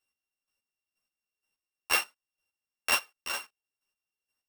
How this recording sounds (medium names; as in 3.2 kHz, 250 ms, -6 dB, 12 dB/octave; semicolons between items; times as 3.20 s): a buzz of ramps at a fixed pitch in blocks of 16 samples; chopped level 2.1 Hz, depth 65%, duty 25%; a shimmering, thickened sound